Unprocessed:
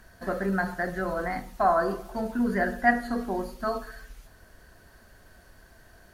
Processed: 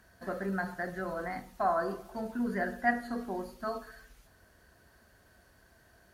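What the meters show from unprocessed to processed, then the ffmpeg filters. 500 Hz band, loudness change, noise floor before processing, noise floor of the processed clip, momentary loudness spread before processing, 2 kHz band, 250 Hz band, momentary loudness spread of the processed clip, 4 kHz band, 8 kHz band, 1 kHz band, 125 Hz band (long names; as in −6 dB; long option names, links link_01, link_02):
−6.5 dB, −6.5 dB, −56 dBFS, −63 dBFS, 10 LU, −6.5 dB, −6.5 dB, 10 LU, −6.5 dB, −6.5 dB, −6.5 dB, −6.5 dB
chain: -af "highpass=55,volume=-6.5dB"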